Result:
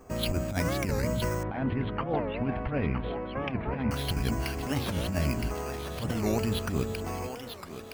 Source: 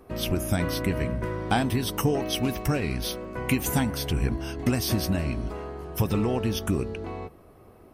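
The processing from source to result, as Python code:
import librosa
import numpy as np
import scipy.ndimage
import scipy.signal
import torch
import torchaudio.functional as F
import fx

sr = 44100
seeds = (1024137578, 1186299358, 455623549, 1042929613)

y = fx.peak_eq(x, sr, hz=350.0, db=-6.5, octaves=0.46)
y = fx.hum_notches(y, sr, base_hz=60, count=3)
y = fx.over_compress(y, sr, threshold_db=-27.0, ratio=-0.5)
y = fx.echo_thinned(y, sr, ms=966, feedback_pct=59, hz=440.0, wet_db=-7)
y = np.repeat(scipy.signal.resample_poly(y, 1, 6), 6)[:len(y)]
y = fx.bessel_lowpass(y, sr, hz=1800.0, order=6, at=(1.43, 3.91))
y = fx.record_warp(y, sr, rpm=45.0, depth_cents=250.0)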